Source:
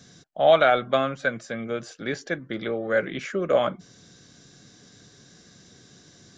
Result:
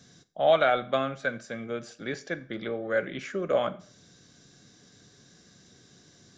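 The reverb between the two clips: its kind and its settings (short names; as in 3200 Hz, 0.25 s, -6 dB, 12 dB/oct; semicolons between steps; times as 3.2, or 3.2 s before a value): Schroeder reverb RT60 0.44 s, combs from 30 ms, DRR 15.5 dB; gain -4.5 dB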